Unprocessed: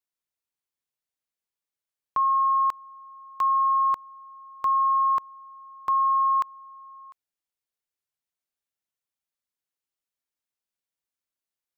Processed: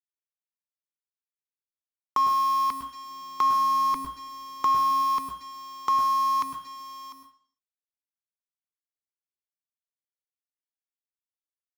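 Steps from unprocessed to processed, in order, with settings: octaver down 2 oct, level -3 dB; dynamic EQ 730 Hz, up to -8 dB, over -39 dBFS, Q 0.81; companded quantiser 4-bit; 3.1–4.91 low shelf 310 Hz +7.5 dB; reverb RT60 0.55 s, pre-delay 0.103 s, DRR 7.5 dB

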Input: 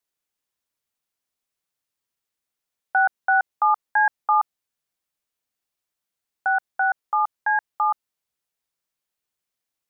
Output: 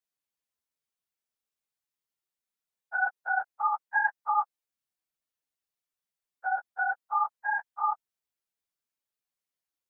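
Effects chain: phase scrambler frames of 50 ms; gain -7.5 dB

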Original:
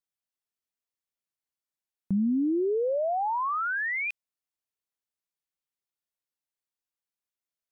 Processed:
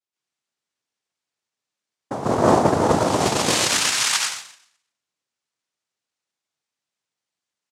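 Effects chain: plate-style reverb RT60 0.74 s, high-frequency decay 0.8×, pre-delay 0.115 s, DRR -9 dB; in parallel at +1 dB: limiter -17 dBFS, peak gain reduction 11.5 dB; on the sum: comb 7.1 ms, depth 52%; modulation noise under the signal 14 dB; noise vocoder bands 2; gain -6.5 dB

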